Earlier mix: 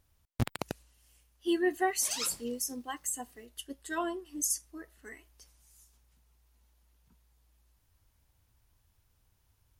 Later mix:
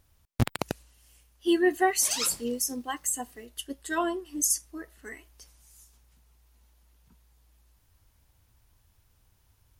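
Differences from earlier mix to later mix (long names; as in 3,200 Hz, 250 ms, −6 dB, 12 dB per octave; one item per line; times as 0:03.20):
speech +5.5 dB
background +5.0 dB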